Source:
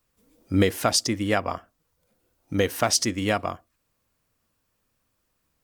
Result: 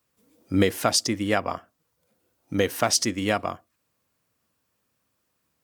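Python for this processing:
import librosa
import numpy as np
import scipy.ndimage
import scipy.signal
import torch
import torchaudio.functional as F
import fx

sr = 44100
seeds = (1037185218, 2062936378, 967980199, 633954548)

y = scipy.signal.sosfilt(scipy.signal.butter(2, 98.0, 'highpass', fs=sr, output='sos'), x)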